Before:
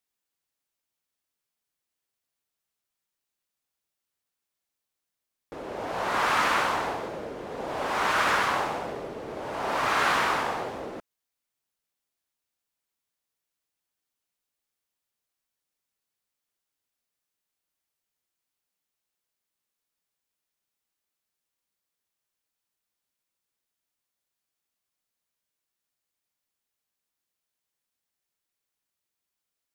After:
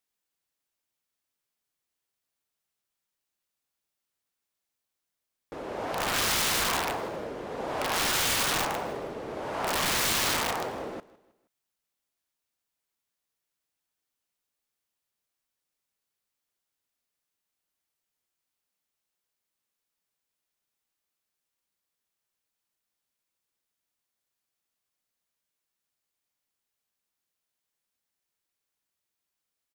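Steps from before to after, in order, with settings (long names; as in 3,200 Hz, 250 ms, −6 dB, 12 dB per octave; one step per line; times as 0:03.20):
wrap-around overflow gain 21.5 dB
repeating echo 158 ms, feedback 41%, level −20.5 dB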